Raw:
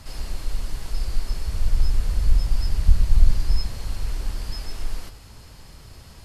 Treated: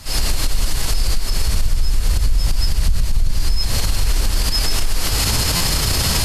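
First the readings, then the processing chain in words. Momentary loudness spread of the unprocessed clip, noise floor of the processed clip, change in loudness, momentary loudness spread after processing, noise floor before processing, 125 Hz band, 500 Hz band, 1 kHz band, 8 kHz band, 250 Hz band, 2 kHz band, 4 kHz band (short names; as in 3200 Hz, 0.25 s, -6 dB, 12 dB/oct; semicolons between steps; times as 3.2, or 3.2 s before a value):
23 LU, -20 dBFS, +7.0 dB, 5 LU, -45 dBFS, +6.0 dB, +13.0 dB, +14.5 dB, n/a, +11.5 dB, +16.5 dB, +18.5 dB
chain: recorder AGC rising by 77 dB/s; high shelf 2400 Hz +8.5 dB; stuck buffer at 5.56, samples 512, times 3; maximiser +9.5 dB; gain -7 dB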